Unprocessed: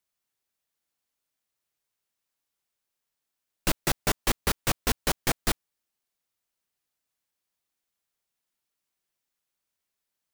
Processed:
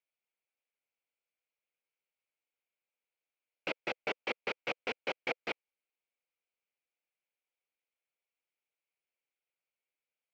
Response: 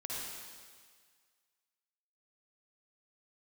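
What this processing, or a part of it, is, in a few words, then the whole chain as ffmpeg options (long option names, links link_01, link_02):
phone earpiece: -af "highpass=370,equalizer=frequency=500:width_type=q:width=4:gain=7,equalizer=frequency=1100:width_type=q:width=4:gain=-6,equalizer=frequency=1800:width_type=q:width=4:gain=-7,equalizer=frequency=3700:width_type=q:width=4:gain=-6,lowpass=frequency=3700:width=0.5412,lowpass=frequency=3700:width=1.3066,equalizer=frequency=2300:width_type=o:width=0.48:gain=10,volume=-7dB"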